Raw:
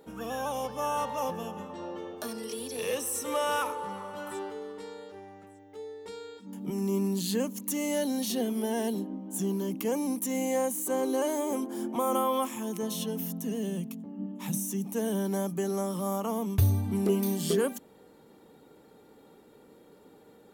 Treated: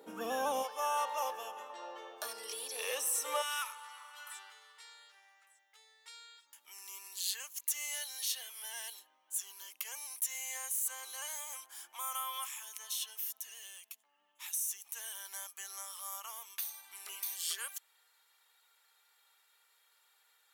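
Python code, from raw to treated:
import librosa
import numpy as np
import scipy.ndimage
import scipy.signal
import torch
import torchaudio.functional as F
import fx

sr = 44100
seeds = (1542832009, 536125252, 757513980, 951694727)

y = fx.bessel_highpass(x, sr, hz=fx.steps((0.0, 320.0), (0.62, 830.0), (3.41, 1900.0)), order=4)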